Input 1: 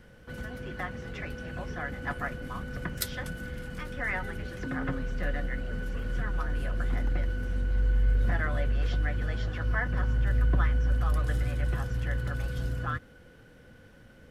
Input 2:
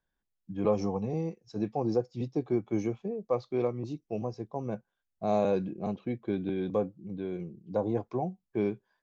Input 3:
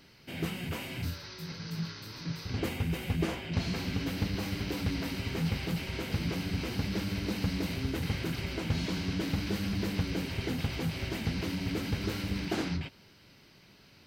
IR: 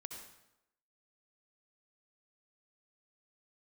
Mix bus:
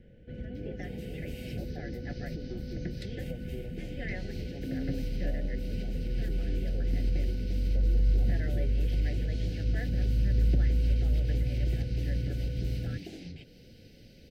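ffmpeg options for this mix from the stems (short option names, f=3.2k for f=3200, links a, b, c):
-filter_complex "[0:a]lowpass=2k,volume=0dB[a];[1:a]volume=-2.5dB[b];[2:a]adelay=550,volume=-1dB[c];[b][c]amix=inputs=2:normalize=0,equalizer=f=800:t=o:w=0.86:g=6.5,acompressor=threshold=-40dB:ratio=6,volume=0dB[d];[a][d]amix=inputs=2:normalize=0,asuperstop=centerf=1100:order=4:qfactor=0.63"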